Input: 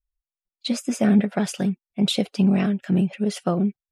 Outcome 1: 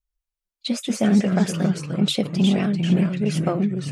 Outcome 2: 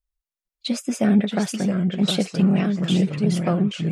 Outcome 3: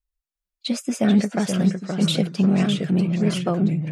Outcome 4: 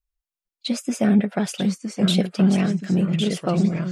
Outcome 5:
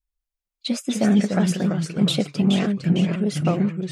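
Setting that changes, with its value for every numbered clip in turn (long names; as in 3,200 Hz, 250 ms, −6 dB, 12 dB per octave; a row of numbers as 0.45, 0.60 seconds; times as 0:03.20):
delay with pitch and tempo change per echo, delay time: 105, 546, 354, 854, 169 milliseconds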